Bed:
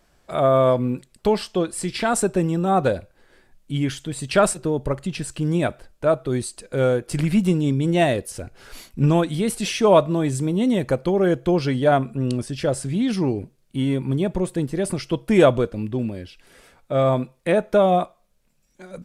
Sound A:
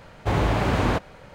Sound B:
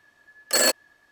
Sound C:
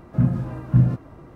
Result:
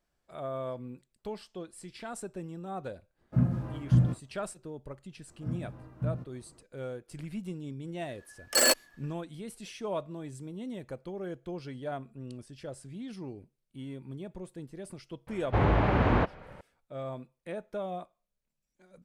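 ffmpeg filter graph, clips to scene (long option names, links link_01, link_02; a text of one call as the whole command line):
ffmpeg -i bed.wav -i cue0.wav -i cue1.wav -i cue2.wav -filter_complex "[3:a]asplit=2[link_01][link_02];[0:a]volume=-19.5dB[link_03];[link_01]agate=range=-33dB:threshold=-34dB:ratio=3:release=100:detection=peak[link_04];[1:a]lowpass=2400[link_05];[link_04]atrim=end=1.35,asetpts=PTS-STARTPTS,volume=-6.5dB,afade=type=in:duration=0.004:curve=hsin,afade=type=out:start_time=1.346:duration=0.004:curve=hsin,adelay=3180[link_06];[link_02]atrim=end=1.35,asetpts=PTS-STARTPTS,volume=-16.5dB,afade=type=in:duration=0.004:curve=hsin,afade=type=out:start_time=1.346:duration=0.004:curve=hsin,adelay=5280[link_07];[2:a]atrim=end=1.11,asetpts=PTS-STARTPTS,volume=-3dB,afade=type=in:duration=0.004:curve=hsin,afade=type=out:start_time=1.106:duration=0.004:curve=hsin,adelay=353682S[link_08];[link_05]atrim=end=1.34,asetpts=PTS-STARTPTS,volume=-2.5dB,afade=type=in:duration=0.004:curve=hsin,afade=type=out:start_time=1.336:duration=0.004:curve=hsin,adelay=15270[link_09];[link_03][link_06][link_07][link_08][link_09]amix=inputs=5:normalize=0" out.wav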